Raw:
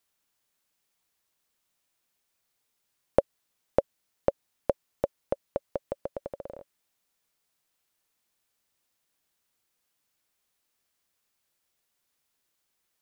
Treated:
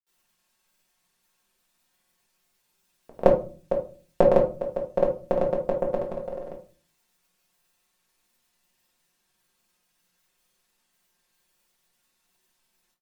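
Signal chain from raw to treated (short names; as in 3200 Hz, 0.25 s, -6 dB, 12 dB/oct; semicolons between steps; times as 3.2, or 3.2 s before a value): comb 5.6 ms, depth 98%; grains, pitch spread up and down by 0 st; shoebox room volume 220 m³, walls furnished, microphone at 1.6 m; gain +3.5 dB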